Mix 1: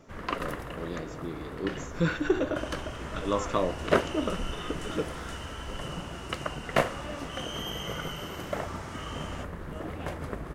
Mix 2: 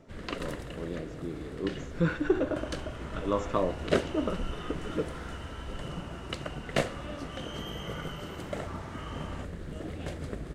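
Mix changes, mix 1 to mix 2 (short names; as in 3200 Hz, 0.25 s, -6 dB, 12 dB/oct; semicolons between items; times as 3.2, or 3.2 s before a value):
first sound: add ten-band EQ 1000 Hz -10 dB, 4000 Hz +8 dB, 8000 Hz +11 dB; master: add high shelf 2700 Hz -11 dB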